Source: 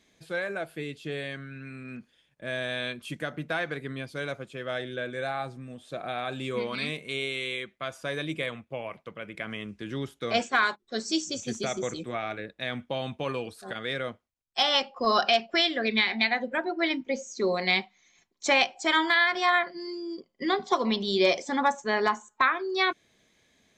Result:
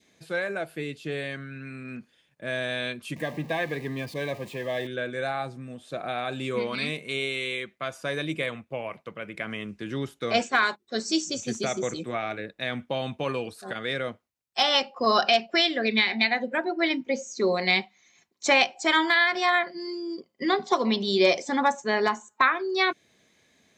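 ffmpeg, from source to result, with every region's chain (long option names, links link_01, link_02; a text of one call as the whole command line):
ffmpeg -i in.wav -filter_complex "[0:a]asettb=1/sr,asplit=3[link_01][link_02][link_03];[link_01]atrim=end=3.164[link_04];[link_02]atrim=start=3.16:end=4.87,asetpts=PTS-STARTPTS,afade=type=in:duration=0.004:curve=qsin,afade=type=out:start_time=1.706:duration=0.004:curve=qsin,aeval=exprs='val(0)+0.5*0.00841*sgn(val(0))':channel_layout=same,asuperstop=centerf=1400:order=20:qfactor=4.1,equalizer=frequency=8500:width=0.62:gain=-5[link_05];[link_03]atrim=start=4.866[link_06];[link_04][link_05]acrossfade=duration=0.004:curve1=hsin:curve2=qsin[link_07];[link_07][link_06]acrossfade=duration=0.004:curve1=qsin:curve2=hsin,highpass=82,bandreject=frequency=3300:width=19,adynamicequalizer=threshold=0.0112:dfrequency=1200:dqfactor=1.5:tfrequency=1200:tqfactor=1.5:attack=5:release=100:ratio=0.375:range=2.5:mode=cutabove:tftype=bell,volume=2.5dB" out.wav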